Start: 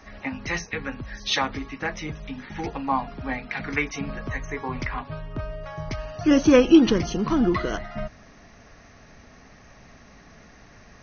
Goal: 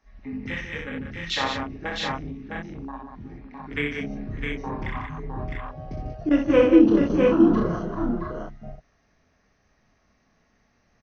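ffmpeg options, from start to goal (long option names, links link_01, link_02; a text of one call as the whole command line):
ffmpeg -i in.wav -filter_complex "[0:a]asettb=1/sr,asplit=3[link_01][link_02][link_03];[link_01]atrim=end=2.164[link_04];[link_02]atrim=start=2.16:end=3.67,asetpts=PTS-STARTPTS,afade=type=in:duration=0.004:curve=qsin,afade=type=out:start_time=1.506:duration=0.004:curve=qsin,acompressor=threshold=-34dB:ratio=4[link_05];[link_03]atrim=start=3.666[link_06];[link_04][link_05]acrossfade=duration=0.004:curve1=hsin:curve2=qsin[link_07];[link_07][link_06]acrossfade=duration=0.004:curve1=qsin:curve2=hsin,flanger=delay=22.5:depth=7.5:speed=0.34,afwtdn=0.0251,aecho=1:1:62|148|187|659|701:0.631|0.299|0.447|0.562|0.531,asettb=1/sr,asplit=3[link_08][link_09][link_10];[link_08]atrim=end=6.294[link_11];[link_09]atrim=start=6.29:end=7.1,asetpts=PTS-STARTPTS,afade=type=in:duration=0.004:curve=qsin,afade=type=out:start_time=0.806:duration=0.004:curve=qsin,agate=range=-33dB:threshold=-16dB:ratio=3:detection=peak[link_12];[link_10]atrim=start=7.096[link_13];[link_11][link_12]acrossfade=duration=0.004:curve1=hsin:curve2=qsin[link_14];[link_14][link_13]acrossfade=duration=0.004:curve1=qsin:curve2=hsin" out.wav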